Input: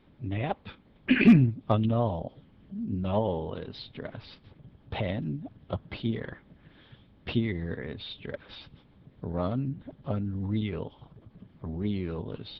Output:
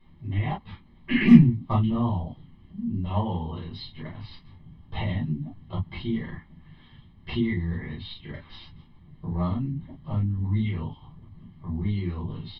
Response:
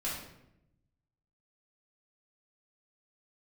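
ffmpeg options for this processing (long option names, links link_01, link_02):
-filter_complex "[0:a]aecho=1:1:1:0.71[link_01];[1:a]atrim=start_sample=2205,atrim=end_sample=4410,asetrate=70560,aresample=44100[link_02];[link_01][link_02]afir=irnorm=-1:irlink=0"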